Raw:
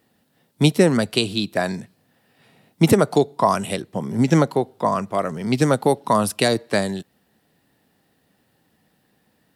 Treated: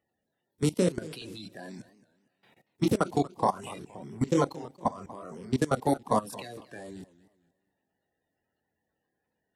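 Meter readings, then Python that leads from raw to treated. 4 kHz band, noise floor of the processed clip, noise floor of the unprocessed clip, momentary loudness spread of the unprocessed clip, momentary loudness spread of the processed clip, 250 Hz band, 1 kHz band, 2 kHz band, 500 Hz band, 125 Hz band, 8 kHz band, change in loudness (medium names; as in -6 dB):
-16.5 dB, -83 dBFS, -65 dBFS, 10 LU, 17 LU, -10.5 dB, -8.5 dB, -15.5 dB, -11.0 dB, -11.5 dB, -11.5 dB, -9.5 dB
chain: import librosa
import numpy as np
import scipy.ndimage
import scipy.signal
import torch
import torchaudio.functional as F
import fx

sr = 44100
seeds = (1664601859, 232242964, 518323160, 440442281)

y = fx.spec_quant(x, sr, step_db=30)
y = fx.chorus_voices(y, sr, voices=6, hz=0.33, base_ms=25, depth_ms=3.1, mix_pct=40)
y = fx.level_steps(y, sr, step_db=20)
y = fx.echo_warbled(y, sr, ms=232, feedback_pct=31, rate_hz=2.8, cents=207, wet_db=-18.5)
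y = F.gain(torch.from_numpy(y), -2.5).numpy()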